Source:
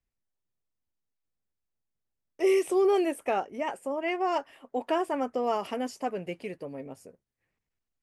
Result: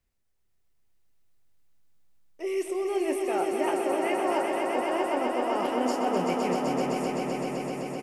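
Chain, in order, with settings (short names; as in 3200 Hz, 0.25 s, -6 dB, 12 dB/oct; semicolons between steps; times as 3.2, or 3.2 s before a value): reverse; compressor 10:1, threshold -35 dBFS, peak gain reduction 15.5 dB; reverse; doubler 28 ms -11 dB; swelling echo 0.128 s, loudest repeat 5, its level -5.5 dB; gain +7 dB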